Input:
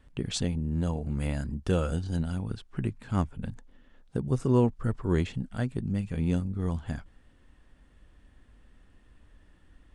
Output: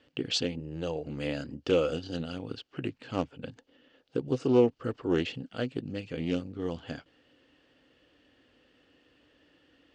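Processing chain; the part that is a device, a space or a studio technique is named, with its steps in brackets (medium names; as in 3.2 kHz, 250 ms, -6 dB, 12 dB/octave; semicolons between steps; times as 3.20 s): 0.59–1.06 s: peaking EQ 240 Hz -15 dB 0.32 oct; full-range speaker at full volume (loudspeaker Doppler distortion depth 0.21 ms; cabinet simulation 190–6600 Hz, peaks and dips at 200 Hz -10 dB, 290 Hz +6 dB, 500 Hz +8 dB, 1 kHz -5 dB, 2.9 kHz +10 dB, 4.6 kHz +7 dB)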